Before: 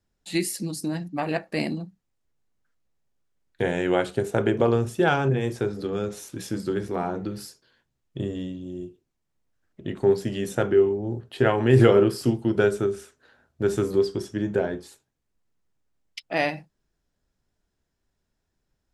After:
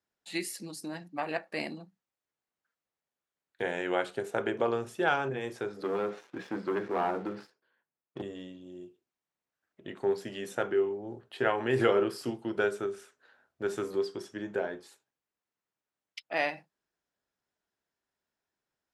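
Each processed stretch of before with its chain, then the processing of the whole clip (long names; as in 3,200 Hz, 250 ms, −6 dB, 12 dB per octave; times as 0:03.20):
0:05.83–0:08.22: band-pass filter 140–2,100 Hz + leveller curve on the samples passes 2
whole clip: high-pass filter 1,000 Hz 6 dB per octave; high-shelf EQ 3,000 Hz −9.5 dB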